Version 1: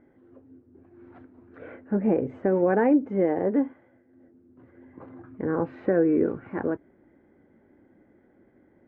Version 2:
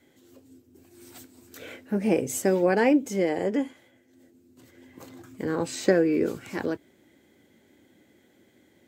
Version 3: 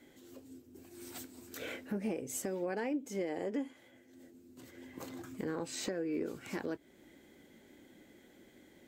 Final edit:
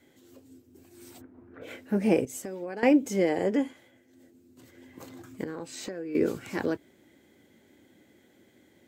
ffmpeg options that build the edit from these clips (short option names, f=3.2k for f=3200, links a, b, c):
-filter_complex "[2:a]asplit=2[a][b];[1:a]asplit=4[c][d][e][f];[c]atrim=end=1.22[g];[0:a]atrim=start=1.12:end=1.71[h];[d]atrim=start=1.61:end=2.252[i];[a]atrim=start=2.248:end=2.832[j];[e]atrim=start=2.828:end=5.442[k];[b]atrim=start=5.438:end=6.152[l];[f]atrim=start=6.148[m];[g][h]acrossfade=d=0.1:c1=tri:c2=tri[n];[n][i]acrossfade=d=0.1:c1=tri:c2=tri[o];[o][j]acrossfade=d=0.004:c1=hsin:c2=hsin[p];[p][k]acrossfade=d=0.004:c1=hsin:c2=hsin[q];[q][l]acrossfade=d=0.004:c1=hsin:c2=hsin[r];[r][m]acrossfade=d=0.004:c1=hsin:c2=hsin"